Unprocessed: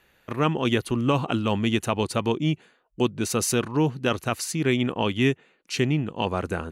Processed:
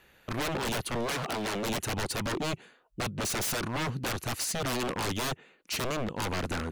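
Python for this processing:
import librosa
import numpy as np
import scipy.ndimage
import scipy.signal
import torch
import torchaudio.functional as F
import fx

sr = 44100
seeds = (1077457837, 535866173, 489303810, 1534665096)

y = 10.0 ** (-27.5 / 20.0) * (np.abs((x / 10.0 ** (-27.5 / 20.0) + 3.0) % 4.0 - 2.0) - 1.0)
y = fx.low_shelf(y, sr, hz=170.0, db=-8.0, at=(1.06, 1.65))
y = F.gain(torch.from_numpy(y), 1.5).numpy()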